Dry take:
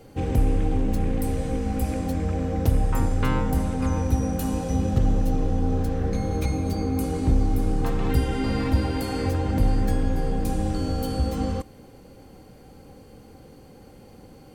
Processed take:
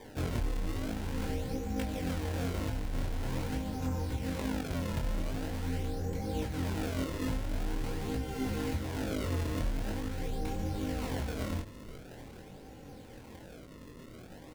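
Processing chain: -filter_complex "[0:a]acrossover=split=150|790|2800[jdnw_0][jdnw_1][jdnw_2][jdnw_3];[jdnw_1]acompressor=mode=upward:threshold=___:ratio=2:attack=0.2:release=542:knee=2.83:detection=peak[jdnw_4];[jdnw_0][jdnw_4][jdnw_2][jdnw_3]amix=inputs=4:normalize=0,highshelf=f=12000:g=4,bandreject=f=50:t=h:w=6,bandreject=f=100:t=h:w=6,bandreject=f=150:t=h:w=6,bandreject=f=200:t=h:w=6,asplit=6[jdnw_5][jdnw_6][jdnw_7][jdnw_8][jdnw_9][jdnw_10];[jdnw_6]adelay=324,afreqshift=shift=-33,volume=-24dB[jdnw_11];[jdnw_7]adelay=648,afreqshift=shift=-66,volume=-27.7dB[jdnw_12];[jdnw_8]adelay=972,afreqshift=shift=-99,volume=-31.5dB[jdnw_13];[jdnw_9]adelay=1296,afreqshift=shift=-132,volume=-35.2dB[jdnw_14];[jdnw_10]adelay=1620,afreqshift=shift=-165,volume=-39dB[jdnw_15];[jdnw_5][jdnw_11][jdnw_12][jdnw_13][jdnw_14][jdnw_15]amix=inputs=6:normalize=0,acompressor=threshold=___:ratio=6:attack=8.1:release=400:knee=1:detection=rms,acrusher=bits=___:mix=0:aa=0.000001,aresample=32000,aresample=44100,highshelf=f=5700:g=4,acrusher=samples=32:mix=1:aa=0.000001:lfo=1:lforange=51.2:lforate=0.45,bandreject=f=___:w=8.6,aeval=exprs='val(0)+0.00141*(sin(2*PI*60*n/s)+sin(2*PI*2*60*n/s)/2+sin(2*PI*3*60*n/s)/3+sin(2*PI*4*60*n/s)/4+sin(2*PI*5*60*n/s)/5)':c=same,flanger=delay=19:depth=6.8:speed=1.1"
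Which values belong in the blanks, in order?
-40dB, -26dB, 10, 1200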